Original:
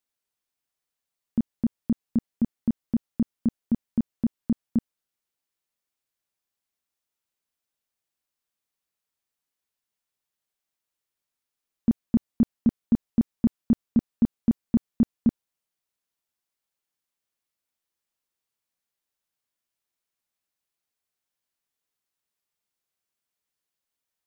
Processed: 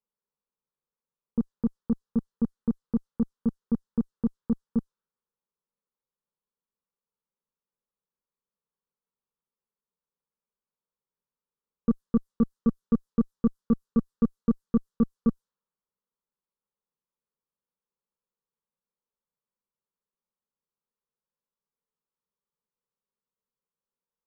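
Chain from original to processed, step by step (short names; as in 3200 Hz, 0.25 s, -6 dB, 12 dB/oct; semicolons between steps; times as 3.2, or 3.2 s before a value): low-pass opened by the level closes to 890 Hz, open at -21 dBFS; added harmonics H 2 -15 dB, 5 -23 dB, 6 -42 dB, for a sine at -12.5 dBFS; fixed phaser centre 460 Hz, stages 8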